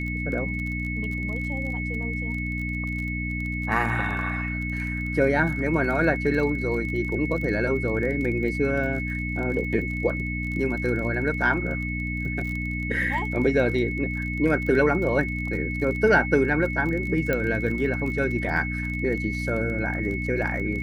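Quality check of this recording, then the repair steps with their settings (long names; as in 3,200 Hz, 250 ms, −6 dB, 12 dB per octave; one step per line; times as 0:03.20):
surface crackle 28 per second −32 dBFS
mains hum 60 Hz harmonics 5 −30 dBFS
whistle 2,200 Hz −31 dBFS
0:17.33: click −12 dBFS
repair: click removal
notch filter 2,200 Hz, Q 30
hum removal 60 Hz, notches 5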